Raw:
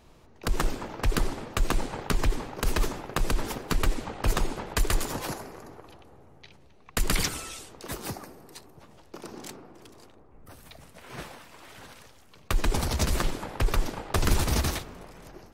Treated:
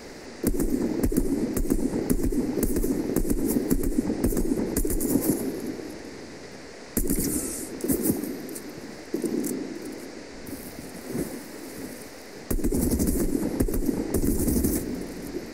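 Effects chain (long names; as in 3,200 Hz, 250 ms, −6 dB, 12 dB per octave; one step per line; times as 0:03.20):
noise in a band 470–4,400 Hz −42 dBFS
brickwall limiter −18 dBFS, peak gain reduction 7 dB
downward compressor 4 to 1, threshold −30 dBFS, peak gain reduction 8 dB
drawn EQ curve 130 Hz 0 dB, 270 Hz +15 dB, 450 Hz +6 dB, 640 Hz −4 dB, 1,200 Hz −14 dB, 2,000 Hz −7 dB, 3,300 Hz −25 dB, 4,800 Hz −7 dB, 9,700 Hz +8 dB
level +5.5 dB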